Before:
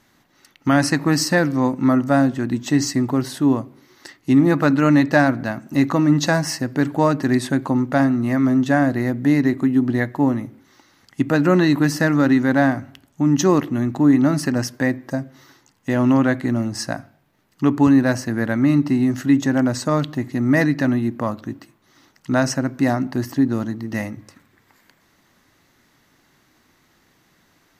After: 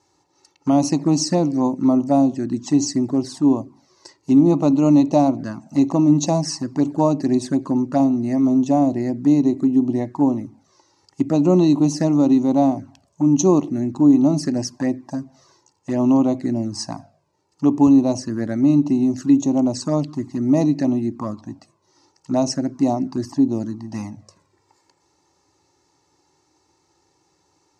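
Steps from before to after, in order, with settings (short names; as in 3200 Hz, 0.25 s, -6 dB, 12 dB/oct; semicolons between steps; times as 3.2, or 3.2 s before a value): band shelf 2200 Hz -14.5 dB; envelope flanger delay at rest 2.3 ms, full sweep at -14.5 dBFS; speaker cabinet 100–8000 Hz, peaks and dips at 130 Hz -9 dB, 230 Hz -4 dB, 480 Hz -7 dB, 2600 Hz +5 dB; gain +3.5 dB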